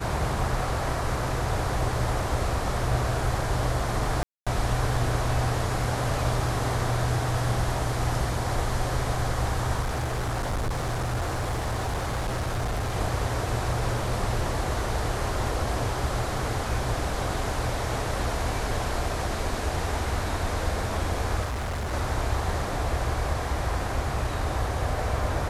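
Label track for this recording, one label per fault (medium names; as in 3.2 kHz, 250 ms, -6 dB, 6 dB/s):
4.230000	4.470000	dropout 236 ms
9.810000	12.960000	clipped -24 dBFS
21.440000	21.940000	clipped -27 dBFS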